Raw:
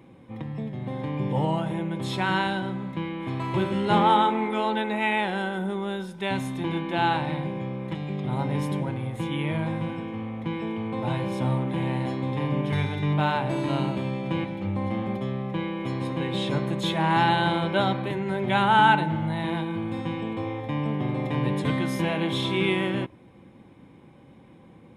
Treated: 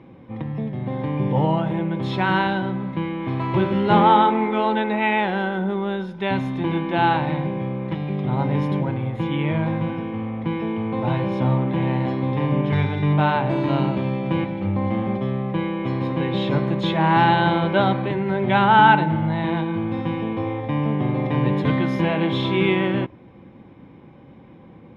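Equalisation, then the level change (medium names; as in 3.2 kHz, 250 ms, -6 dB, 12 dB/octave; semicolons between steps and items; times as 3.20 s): distance through air 57 m; treble shelf 4.1 kHz -7 dB; peaking EQ 8.3 kHz -11.5 dB 0.6 oct; +5.5 dB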